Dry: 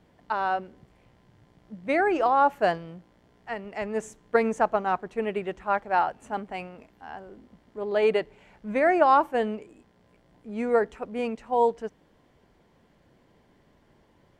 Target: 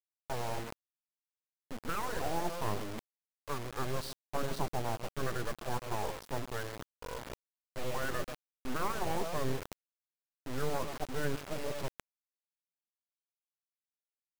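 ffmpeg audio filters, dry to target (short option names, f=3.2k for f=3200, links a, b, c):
-filter_complex "[0:a]asetrate=26990,aresample=44100,atempo=1.63392,equalizer=f=620:t=o:w=0.24:g=6,asplit=2[a][b];[b]adelay=134.1,volume=-18dB,highshelf=f=4k:g=-3.02[c];[a][c]amix=inputs=2:normalize=0,afftfilt=real='re*lt(hypot(re,im),0.447)':imag='im*lt(hypot(re,im),0.447)':win_size=1024:overlap=0.75,acrossover=split=420[d][e];[d]aeval=exprs='abs(val(0))':c=same[f];[e]alimiter=level_in=2dB:limit=-24dB:level=0:latency=1:release=317,volume=-2dB[g];[f][g]amix=inputs=2:normalize=0,acrusher=bits=4:dc=4:mix=0:aa=0.000001,areverse,acompressor=mode=upward:threshold=-38dB:ratio=2.5,areverse"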